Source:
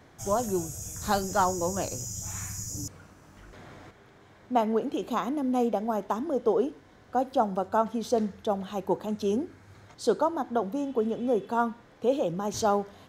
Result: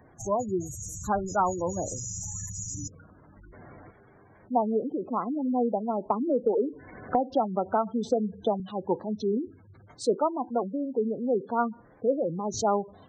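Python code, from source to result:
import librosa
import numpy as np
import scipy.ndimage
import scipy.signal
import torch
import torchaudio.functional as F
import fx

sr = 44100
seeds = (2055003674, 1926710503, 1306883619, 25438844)

y = fx.spec_gate(x, sr, threshold_db=-15, keep='strong')
y = fx.high_shelf(y, sr, hz=9200.0, db=8.5)
y = fx.band_squash(y, sr, depth_pct=100, at=(6.1, 8.6))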